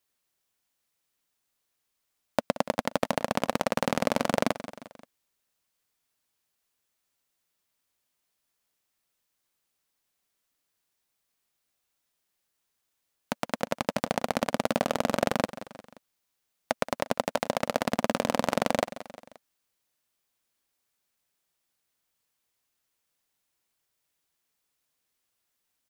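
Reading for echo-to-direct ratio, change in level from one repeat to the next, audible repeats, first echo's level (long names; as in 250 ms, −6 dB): −13.5 dB, −5.5 dB, 3, −15.0 dB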